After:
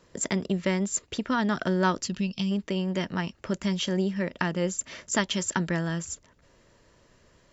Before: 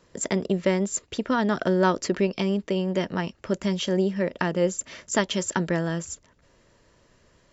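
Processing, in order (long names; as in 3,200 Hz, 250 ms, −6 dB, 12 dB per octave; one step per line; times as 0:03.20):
gain on a spectral selection 0:02.04–0:02.51, 250–2,500 Hz −12 dB
dynamic equaliser 490 Hz, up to −7 dB, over −38 dBFS, Q 1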